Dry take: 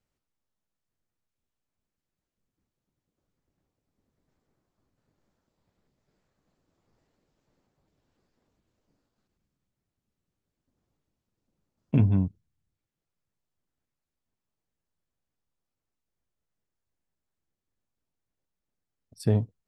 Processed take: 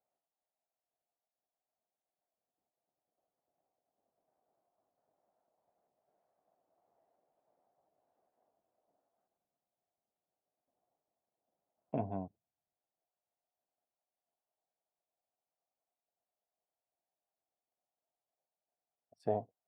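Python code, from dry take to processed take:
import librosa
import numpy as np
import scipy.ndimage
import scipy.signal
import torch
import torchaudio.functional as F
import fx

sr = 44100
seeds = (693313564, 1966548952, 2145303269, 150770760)

y = fx.bandpass_q(x, sr, hz=700.0, q=5.5)
y = F.gain(torch.from_numpy(y), 8.5).numpy()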